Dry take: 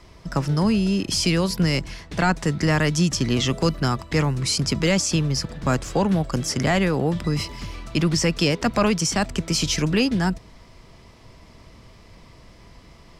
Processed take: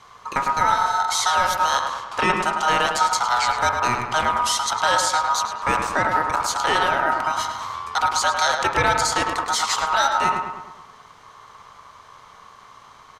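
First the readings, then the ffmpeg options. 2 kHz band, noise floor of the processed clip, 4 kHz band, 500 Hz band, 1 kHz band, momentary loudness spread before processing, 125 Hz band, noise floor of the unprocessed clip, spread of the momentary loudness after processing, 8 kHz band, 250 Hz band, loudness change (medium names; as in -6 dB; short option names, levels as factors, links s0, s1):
+5.5 dB, -48 dBFS, +1.0 dB, -2.5 dB, +12.0 dB, 6 LU, -15.0 dB, -49 dBFS, 5 LU, +1.5 dB, -13.5 dB, +1.5 dB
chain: -filter_complex "[0:a]bandreject=f=50.2:t=h:w=4,bandreject=f=100.4:t=h:w=4,bandreject=f=150.6:t=h:w=4,bandreject=f=200.8:t=h:w=4,bandreject=f=251:t=h:w=4,bandreject=f=301.2:t=h:w=4,bandreject=f=351.4:t=h:w=4,bandreject=f=401.6:t=h:w=4,bandreject=f=451.8:t=h:w=4,bandreject=f=502:t=h:w=4,bandreject=f=552.2:t=h:w=4,bandreject=f=602.4:t=h:w=4,bandreject=f=652.6:t=h:w=4,bandreject=f=702.8:t=h:w=4,bandreject=f=753:t=h:w=4,bandreject=f=803.2:t=h:w=4,bandreject=f=853.4:t=h:w=4,bandreject=f=903.6:t=h:w=4,bandreject=f=953.8:t=h:w=4,bandreject=f=1004:t=h:w=4,bandreject=f=1054.2:t=h:w=4,bandreject=f=1104.4:t=h:w=4,bandreject=f=1154.6:t=h:w=4,bandreject=f=1204.8:t=h:w=4,bandreject=f=1255:t=h:w=4,bandreject=f=1305.2:t=h:w=4,bandreject=f=1355.4:t=h:w=4,bandreject=f=1405.6:t=h:w=4,bandreject=f=1455.8:t=h:w=4,bandreject=f=1506:t=h:w=4,bandreject=f=1556.2:t=h:w=4,aeval=exprs='val(0)*sin(2*PI*1100*n/s)':c=same,asplit=2[s0][s1];[s1]adelay=105,lowpass=f=2800:p=1,volume=0.562,asplit=2[s2][s3];[s3]adelay=105,lowpass=f=2800:p=1,volume=0.54,asplit=2[s4][s5];[s5]adelay=105,lowpass=f=2800:p=1,volume=0.54,asplit=2[s6][s7];[s7]adelay=105,lowpass=f=2800:p=1,volume=0.54,asplit=2[s8][s9];[s9]adelay=105,lowpass=f=2800:p=1,volume=0.54,asplit=2[s10][s11];[s11]adelay=105,lowpass=f=2800:p=1,volume=0.54,asplit=2[s12][s13];[s13]adelay=105,lowpass=f=2800:p=1,volume=0.54[s14];[s0][s2][s4][s6][s8][s10][s12][s14]amix=inputs=8:normalize=0,volume=1.41"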